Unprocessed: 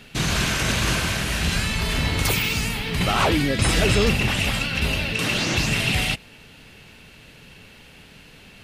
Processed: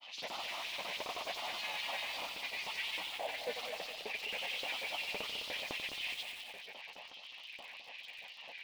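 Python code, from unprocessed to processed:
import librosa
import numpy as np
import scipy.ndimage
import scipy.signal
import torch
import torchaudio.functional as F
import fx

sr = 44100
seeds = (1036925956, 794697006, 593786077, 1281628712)

y = scipy.signal.sosfilt(scipy.signal.butter(4, 100.0, 'highpass', fs=sr, output='sos'), x)
y = fx.peak_eq(y, sr, hz=250.0, db=-6.5, octaves=2.2)
y = fx.over_compress(y, sr, threshold_db=-28.0, ratio=-0.5)
y = fx.tube_stage(y, sr, drive_db=37.0, bias=0.8)
y = fx.fixed_phaser(y, sr, hz=390.0, stages=6)
y = fx.filter_lfo_highpass(y, sr, shape='saw_up', hz=3.7, low_hz=450.0, high_hz=6200.0, q=1.5)
y = fx.granulator(y, sr, seeds[0], grain_ms=100.0, per_s=20.0, spray_ms=100.0, spread_st=3)
y = fx.air_absorb(y, sr, metres=280.0)
y = fx.echo_feedback(y, sr, ms=208, feedback_pct=41, wet_db=-9)
y = fx.echo_crushed(y, sr, ms=90, feedback_pct=80, bits=9, wet_db=-8.0)
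y = y * 10.0 ** (8.0 / 20.0)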